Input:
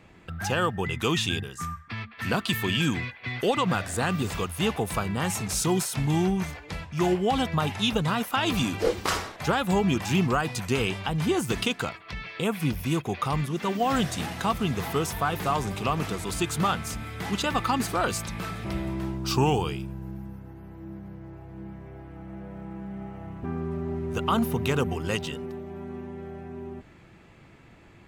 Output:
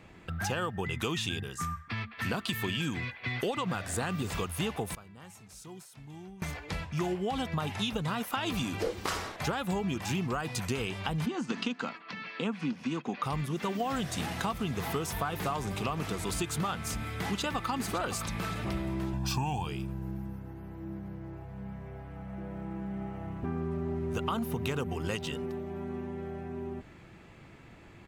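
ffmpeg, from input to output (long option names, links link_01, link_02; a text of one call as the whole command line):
ffmpeg -i in.wav -filter_complex "[0:a]asplit=3[link_01][link_02][link_03];[link_01]afade=type=out:start_time=11.25:duration=0.02[link_04];[link_02]highpass=frequency=190:width=0.5412,highpass=frequency=190:width=1.3066,equalizer=frequency=240:width_type=q:width=4:gain=7,equalizer=frequency=380:width_type=q:width=4:gain=-7,equalizer=frequency=650:width_type=q:width=4:gain=-5,equalizer=frequency=2200:width_type=q:width=4:gain=-4,equalizer=frequency=3500:width_type=q:width=4:gain=-5,equalizer=frequency=5300:width_type=q:width=4:gain=-3,lowpass=frequency=5900:width=0.5412,lowpass=frequency=5900:width=1.3066,afade=type=in:start_time=11.25:duration=0.02,afade=type=out:start_time=13.22:duration=0.02[link_05];[link_03]afade=type=in:start_time=13.22:duration=0.02[link_06];[link_04][link_05][link_06]amix=inputs=3:normalize=0,asplit=2[link_07][link_08];[link_08]afade=type=in:start_time=17.04:duration=0.01,afade=type=out:start_time=17.69:duration=0.01,aecho=0:1:560|1120|1680|2240:0.298538|0.104488|0.0365709|0.0127998[link_09];[link_07][link_09]amix=inputs=2:normalize=0,asettb=1/sr,asplit=3[link_10][link_11][link_12];[link_10]atrim=end=19.134[link_13];[link_11]atrim=start=19.13:end=19.67,asetpts=PTS-STARTPTS,afade=type=in:duration=0.004:curve=qsin,afade=type=out:start_time=0.536:duration=0.004:curve=qsin,aecho=1:1:1.2:0.75,atrim=end_sample=23814[link_14];[link_12]atrim=start=19.666[link_15];[link_13][link_14]acrossfade=duration=0.004:curve1=hsin:curve2=qsin[link_16];[link_16][link_15]acrossfade=duration=0.004:curve1=qsin:curve2=hsin,asettb=1/sr,asplit=3[link_17][link_18][link_19];[link_17]atrim=end=21.434[link_20];[link_18]atrim=start=21.43:end=22.38,asetpts=PTS-STARTPTS,afade=type=in:duration=0.004:curve=qsin,afade=type=out:start_time=0.946:duration=0.004:curve=qsin,bandreject=frequency=330:width=5.3[link_21];[link_19]atrim=start=22.376[link_22];[link_20][link_21]acrossfade=duration=0.004:curve1=hsin:curve2=qsin[link_23];[link_23][link_22]acrossfade=duration=0.004:curve1=qsin:curve2=hsin,asplit=3[link_24][link_25][link_26];[link_24]atrim=end=4.95,asetpts=PTS-STARTPTS,afade=type=out:start_time=4.75:duration=0.2:curve=log:silence=0.0749894[link_27];[link_25]atrim=start=4.95:end=6.42,asetpts=PTS-STARTPTS,volume=-22.5dB[link_28];[link_26]atrim=start=6.42,asetpts=PTS-STARTPTS,afade=type=in:duration=0.2:curve=log:silence=0.0749894[link_29];[link_27][link_28][link_29]concat=n=3:v=0:a=1,acompressor=threshold=-29dB:ratio=6" out.wav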